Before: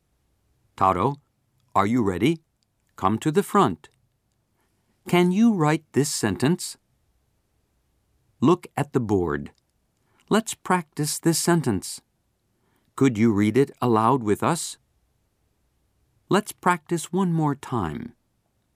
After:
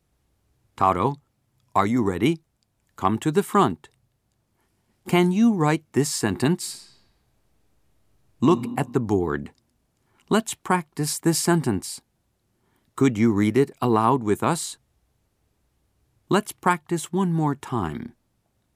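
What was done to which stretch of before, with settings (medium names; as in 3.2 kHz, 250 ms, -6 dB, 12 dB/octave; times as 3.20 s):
6.56–8.46 s: reverb throw, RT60 1.4 s, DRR 2.5 dB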